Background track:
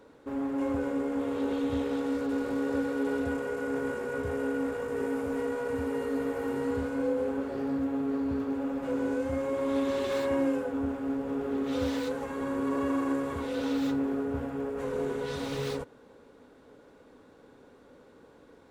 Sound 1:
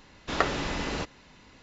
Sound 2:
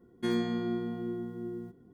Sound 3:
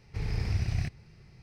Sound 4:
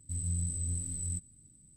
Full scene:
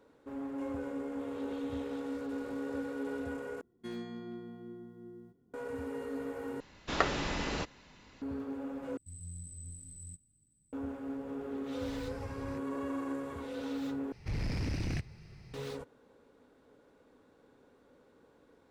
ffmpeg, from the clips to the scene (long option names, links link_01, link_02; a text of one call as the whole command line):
ffmpeg -i bed.wav -i cue0.wav -i cue1.wav -i cue2.wav -i cue3.wav -filter_complex "[3:a]asplit=2[link_01][link_02];[0:a]volume=-8dB[link_03];[2:a]asoftclip=type=hard:threshold=-23.5dB[link_04];[link_02]aeval=exprs='0.119*sin(PI/2*2.82*val(0)/0.119)':channel_layout=same[link_05];[link_03]asplit=5[link_06][link_07][link_08][link_09][link_10];[link_06]atrim=end=3.614[link_11];[link_04]atrim=end=1.93,asetpts=PTS-STARTPTS,volume=-11.5dB[link_12];[link_07]atrim=start=5.536:end=6.604[link_13];[1:a]atrim=end=1.62,asetpts=PTS-STARTPTS,volume=-3.5dB[link_14];[link_08]atrim=start=8.216:end=8.974[link_15];[4:a]atrim=end=1.76,asetpts=PTS-STARTPTS,volume=-12dB[link_16];[link_09]atrim=start=10.726:end=14.124[link_17];[link_05]atrim=end=1.42,asetpts=PTS-STARTPTS,volume=-11.5dB[link_18];[link_10]atrim=start=15.536[link_19];[link_01]atrim=end=1.42,asetpts=PTS-STARTPTS,volume=-15.5dB,afade=type=in:duration=0.004:curve=hsin,afade=type=out:start_time=1.416:duration=0.004:curve=hsin,adelay=515970S[link_20];[link_11][link_12]acrossfade=duration=0.004:curve1=hsin:curve2=hsin[link_21];[link_21][link_13]acrossfade=duration=0.004:curve1=hsin:curve2=hsin[link_22];[link_22][link_14]acrossfade=duration=0.004:curve1=hsin:curve2=hsin[link_23];[link_23][link_15]acrossfade=duration=0.004:curve1=hsin:curve2=hsin[link_24];[link_24][link_16]acrossfade=duration=0.004:curve1=hsin:curve2=hsin[link_25];[link_25][link_17]acrossfade=duration=0.004:curve1=hsin:curve2=hsin[link_26];[link_26][link_18]acrossfade=duration=0.004:curve1=hsin:curve2=hsin[link_27];[link_27][link_19]acrossfade=duration=0.004:curve1=hsin:curve2=hsin[link_28];[link_28][link_20]amix=inputs=2:normalize=0" out.wav